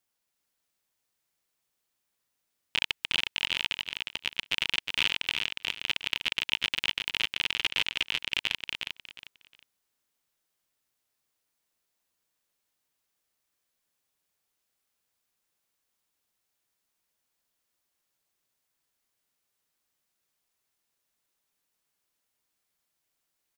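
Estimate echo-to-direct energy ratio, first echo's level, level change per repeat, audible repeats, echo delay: −4.5 dB, −5.0 dB, −12.0 dB, 3, 360 ms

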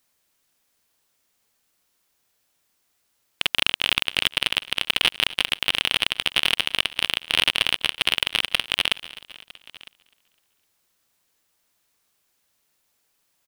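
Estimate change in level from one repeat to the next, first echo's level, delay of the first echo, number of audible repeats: repeats not evenly spaced, −19.0 dB, 254 ms, 4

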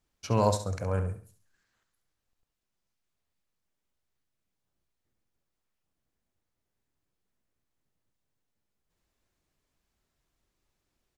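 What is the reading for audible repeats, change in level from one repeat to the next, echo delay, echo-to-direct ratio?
3, −9.5 dB, 68 ms, −9.5 dB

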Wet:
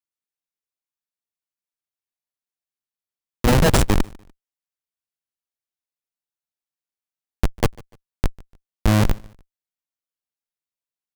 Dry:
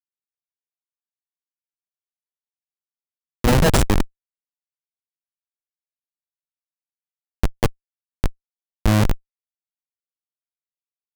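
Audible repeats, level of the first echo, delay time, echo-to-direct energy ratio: 2, −24.0 dB, 147 ms, −23.5 dB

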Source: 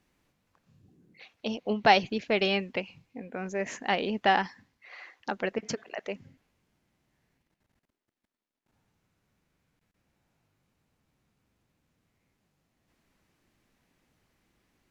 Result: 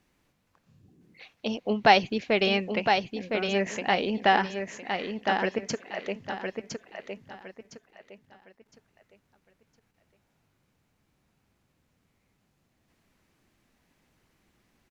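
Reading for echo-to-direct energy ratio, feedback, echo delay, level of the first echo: −5.0 dB, 29%, 1,011 ms, −5.5 dB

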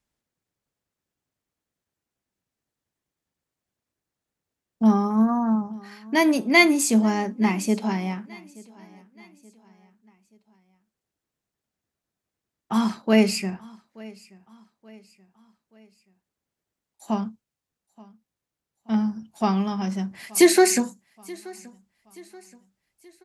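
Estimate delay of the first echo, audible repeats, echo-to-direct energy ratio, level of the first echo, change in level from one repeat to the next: 878 ms, 2, −22.0 dB, −23.0 dB, −7.0 dB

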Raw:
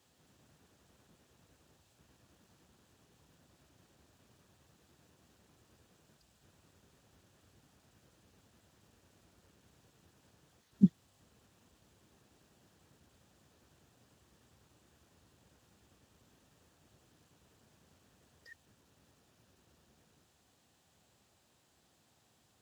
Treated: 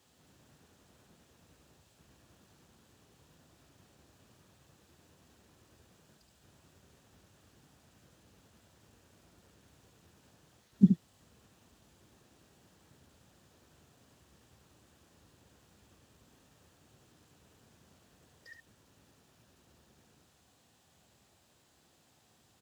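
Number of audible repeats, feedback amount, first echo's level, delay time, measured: 1, repeats not evenly spaced, −6.5 dB, 72 ms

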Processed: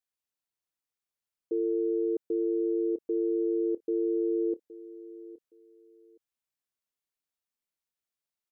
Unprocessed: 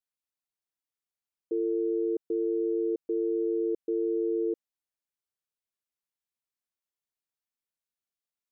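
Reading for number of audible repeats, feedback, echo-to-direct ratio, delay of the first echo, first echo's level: 2, 23%, −17.0 dB, 818 ms, −17.0 dB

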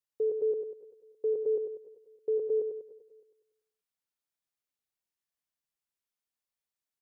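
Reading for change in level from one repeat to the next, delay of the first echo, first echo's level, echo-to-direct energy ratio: repeats not evenly spaced, 97 ms, −6.0 dB, −4.5 dB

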